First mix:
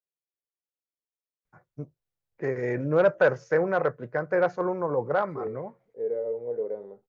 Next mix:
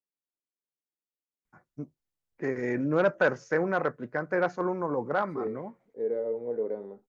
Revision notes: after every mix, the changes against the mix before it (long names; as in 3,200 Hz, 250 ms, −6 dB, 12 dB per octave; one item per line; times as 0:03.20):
second voice +3.5 dB
master: add octave-band graphic EQ 125/250/500/8,000 Hz −7/+7/−6/+4 dB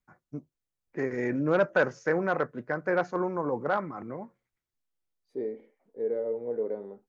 first voice: entry −1.45 s